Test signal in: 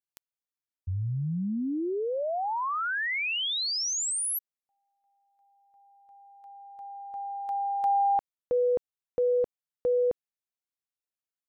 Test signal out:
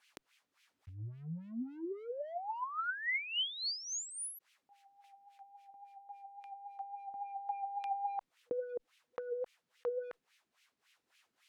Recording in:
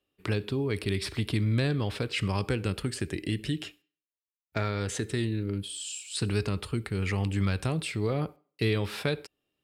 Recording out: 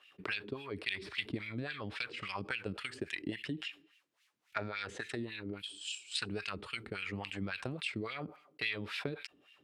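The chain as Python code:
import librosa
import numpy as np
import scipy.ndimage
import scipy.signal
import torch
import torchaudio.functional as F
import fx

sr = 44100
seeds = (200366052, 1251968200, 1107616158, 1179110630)

y = fx.transient(x, sr, attack_db=10, sustain_db=-2)
y = fx.tone_stack(y, sr, knobs='5-5-5')
y = fx.wah_lfo(y, sr, hz=3.6, low_hz=250.0, high_hz=2700.0, q=2.2)
y = fx.env_flatten(y, sr, amount_pct=50)
y = y * librosa.db_to_amplitude(7.0)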